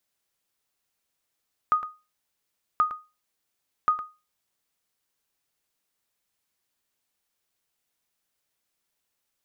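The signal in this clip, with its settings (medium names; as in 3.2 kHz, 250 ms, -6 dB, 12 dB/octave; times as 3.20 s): sonar ping 1.24 kHz, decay 0.28 s, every 1.08 s, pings 3, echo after 0.11 s, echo -12 dB -13.5 dBFS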